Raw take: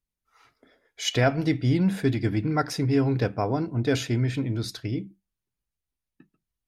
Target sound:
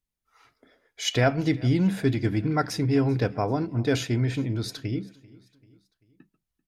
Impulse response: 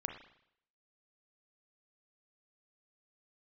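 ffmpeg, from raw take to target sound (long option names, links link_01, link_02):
-af "aecho=1:1:390|780|1170:0.0708|0.0347|0.017"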